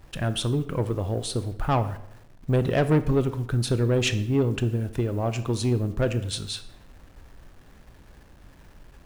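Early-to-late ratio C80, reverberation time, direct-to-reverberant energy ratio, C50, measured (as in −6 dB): 16.5 dB, 0.75 s, 11.0 dB, 13.5 dB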